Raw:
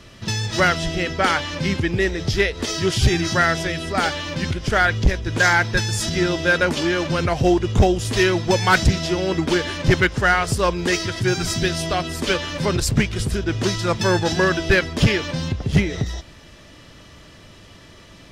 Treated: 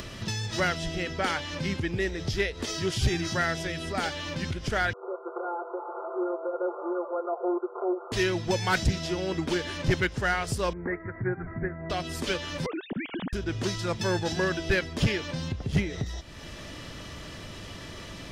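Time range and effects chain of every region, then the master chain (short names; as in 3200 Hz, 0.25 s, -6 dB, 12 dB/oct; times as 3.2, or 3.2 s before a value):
4.93–8.12 delta modulation 16 kbps, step -32 dBFS + brick-wall FIR band-pass 350–1500 Hz + comb 5.8 ms, depth 85%
10.73–11.9 steep low-pass 2100 Hz 96 dB/oct + upward expander, over -30 dBFS
12.66–13.33 sine-wave speech + compressor, threshold -22 dBFS
whole clip: dynamic EQ 1200 Hz, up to -3 dB, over -30 dBFS, Q 2.2; upward compressor, threshold -20 dBFS; gain -8.5 dB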